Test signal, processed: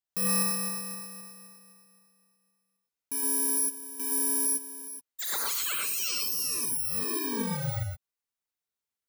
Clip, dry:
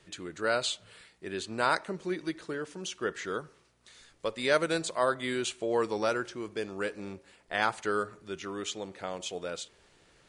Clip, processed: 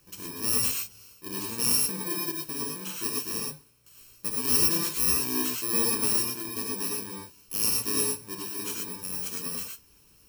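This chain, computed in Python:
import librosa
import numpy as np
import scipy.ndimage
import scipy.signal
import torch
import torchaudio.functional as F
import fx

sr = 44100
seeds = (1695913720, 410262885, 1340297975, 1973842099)

y = fx.bit_reversed(x, sr, seeds[0], block=64)
y = fx.rev_gated(y, sr, seeds[1], gate_ms=140, shape='rising', drr_db=-1.5)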